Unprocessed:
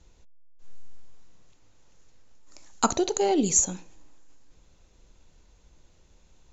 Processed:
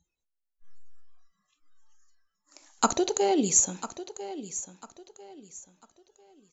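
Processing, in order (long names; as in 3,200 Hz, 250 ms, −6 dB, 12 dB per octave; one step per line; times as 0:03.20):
noise reduction from a noise print of the clip's start 28 dB
low-shelf EQ 150 Hz −7 dB
repeating echo 997 ms, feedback 30%, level −13.5 dB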